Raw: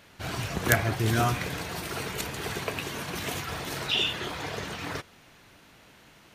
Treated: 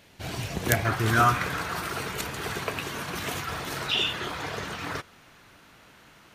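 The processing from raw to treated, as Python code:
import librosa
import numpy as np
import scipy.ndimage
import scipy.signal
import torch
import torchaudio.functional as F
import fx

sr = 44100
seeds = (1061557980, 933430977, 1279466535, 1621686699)

y = fx.peak_eq(x, sr, hz=1300.0, db=fx.steps((0.0, -5.5), (0.85, 11.5), (1.9, 4.5)), octaves=0.79)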